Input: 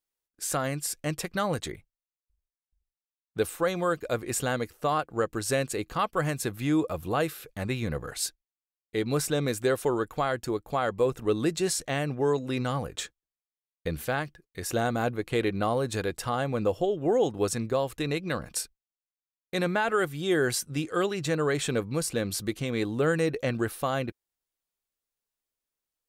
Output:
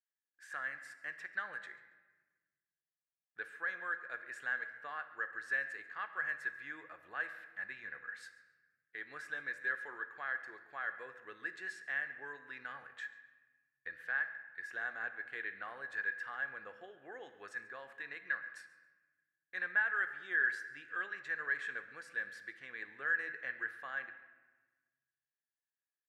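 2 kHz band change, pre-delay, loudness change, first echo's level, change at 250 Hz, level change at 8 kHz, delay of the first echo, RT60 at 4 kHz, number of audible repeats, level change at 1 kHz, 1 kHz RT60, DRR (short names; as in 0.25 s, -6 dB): 0.0 dB, 3 ms, -11.0 dB, -19.5 dB, -31.5 dB, under -30 dB, 0.139 s, 0.85 s, 1, -15.5 dB, 1.2 s, 8.5 dB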